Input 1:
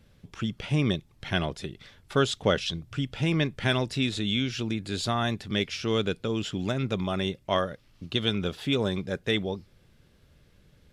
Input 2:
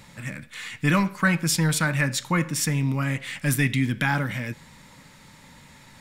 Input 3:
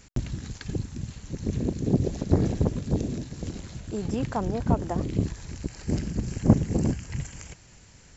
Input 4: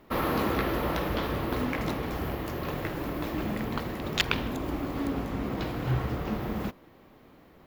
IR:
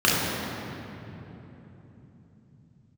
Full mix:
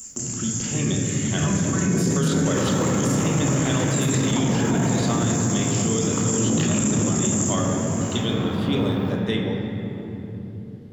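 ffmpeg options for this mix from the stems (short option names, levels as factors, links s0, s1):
-filter_complex "[0:a]volume=0.75,asplit=2[s0][s1];[s1]volume=0.106[s2];[1:a]alimiter=limit=0.126:level=0:latency=1,adelay=500,volume=0.376,asplit=2[s3][s4];[s4]volume=0.2[s5];[2:a]highpass=180,aexciter=amount=15.7:drive=8.9:freq=6100,volume=0.376,asplit=2[s6][s7];[s7]volume=0.335[s8];[3:a]bass=f=250:g=-13,treble=f=4000:g=-5,tremolo=f=62:d=0.889,adelay=2400,volume=0.668,asplit=2[s9][s10];[s10]volume=0.282[s11];[4:a]atrim=start_sample=2205[s12];[s2][s5][s8][s11]amix=inputs=4:normalize=0[s13];[s13][s12]afir=irnorm=-1:irlink=0[s14];[s0][s3][s6][s9][s14]amix=inputs=5:normalize=0,alimiter=limit=0.224:level=0:latency=1:release=14"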